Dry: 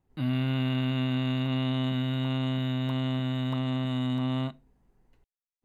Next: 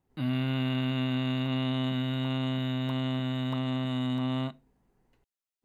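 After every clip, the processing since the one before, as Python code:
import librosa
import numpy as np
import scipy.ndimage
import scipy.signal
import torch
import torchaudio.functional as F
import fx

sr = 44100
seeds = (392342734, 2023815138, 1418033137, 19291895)

y = fx.low_shelf(x, sr, hz=74.0, db=-9.5)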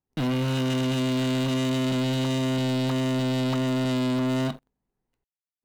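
y = fx.leveller(x, sr, passes=5)
y = y * 10.0 ** (-2.5 / 20.0)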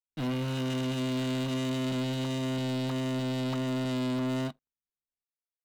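y = fx.upward_expand(x, sr, threshold_db=-39.0, expansion=2.5)
y = y * 10.0 ** (-5.0 / 20.0)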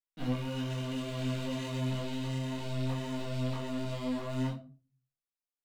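y = fx.room_shoebox(x, sr, seeds[0], volume_m3=190.0, walls='furnished', distance_m=1.8)
y = fx.detune_double(y, sr, cents=22)
y = y * 10.0 ** (-4.0 / 20.0)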